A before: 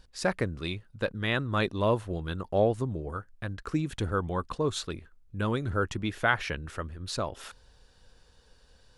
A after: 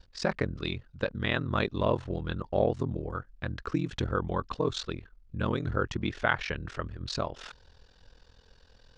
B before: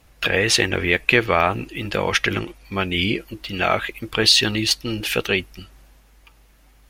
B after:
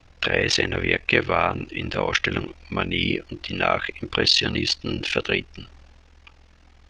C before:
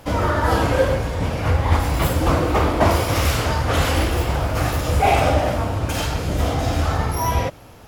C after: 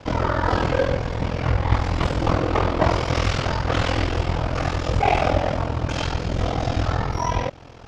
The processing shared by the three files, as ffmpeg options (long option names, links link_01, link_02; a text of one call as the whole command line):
ffmpeg -i in.wav -filter_complex "[0:a]lowpass=frequency=6000:width=0.5412,lowpass=frequency=6000:width=1.3066,asplit=2[link_01][link_02];[link_02]acompressor=threshold=-29dB:ratio=6,volume=-2.5dB[link_03];[link_01][link_03]amix=inputs=2:normalize=0,aeval=exprs='val(0)*sin(2*PI*21*n/s)':channel_layout=same,volume=-1dB" out.wav